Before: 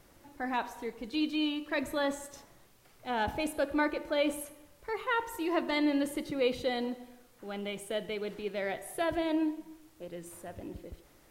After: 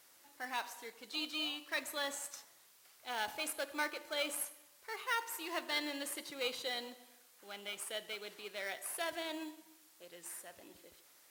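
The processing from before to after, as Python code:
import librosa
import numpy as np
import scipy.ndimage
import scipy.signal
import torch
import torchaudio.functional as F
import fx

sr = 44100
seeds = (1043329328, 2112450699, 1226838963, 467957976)

p1 = fx.high_shelf(x, sr, hz=2200.0, db=10.0)
p2 = fx.sample_hold(p1, sr, seeds[0], rate_hz=3700.0, jitter_pct=0)
p3 = p1 + F.gain(torch.from_numpy(p2), -9.0).numpy()
p4 = fx.highpass(p3, sr, hz=1300.0, slope=6)
y = F.gain(torch.from_numpy(p4), -6.0).numpy()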